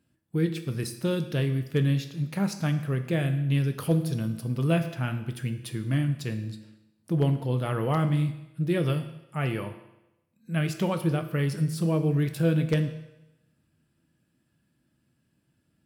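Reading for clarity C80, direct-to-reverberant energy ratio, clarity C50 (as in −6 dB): 13.0 dB, 7.5 dB, 11.0 dB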